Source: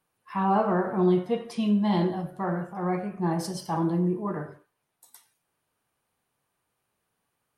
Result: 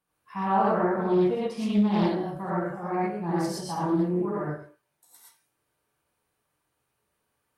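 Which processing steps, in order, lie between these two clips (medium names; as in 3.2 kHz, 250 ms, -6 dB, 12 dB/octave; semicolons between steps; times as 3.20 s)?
gated-style reverb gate 140 ms rising, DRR -7 dB; loudspeaker Doppler distortion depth 0.28 ms; trim -6.5 dB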